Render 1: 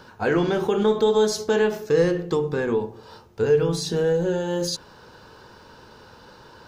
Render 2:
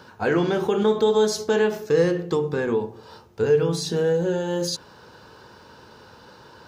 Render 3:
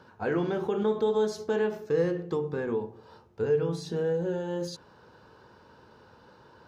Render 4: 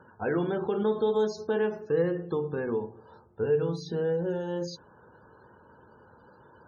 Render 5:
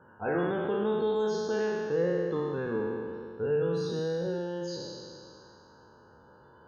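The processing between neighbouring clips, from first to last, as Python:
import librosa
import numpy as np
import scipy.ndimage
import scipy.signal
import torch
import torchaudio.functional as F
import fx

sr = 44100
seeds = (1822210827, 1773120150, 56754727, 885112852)

y1 = scipy.signal.sosfilt(scipy.signal.butter(2, 62.0, 'highpass', fs=sr, output='sos'), x)
y2 = fx.high_shelf(y1, sr, hz=2900.0, db=-10.0)
y2 = y2 * 10.0 ** (-6.5 / 20.0)
y3 = fx.spec_topn(y2, sr, count=64)
y4 = fx.spec_trails(y3, sr, decay_s=2.31)
y4 = y4 * 10.0 ** (-4.5 / 20.0)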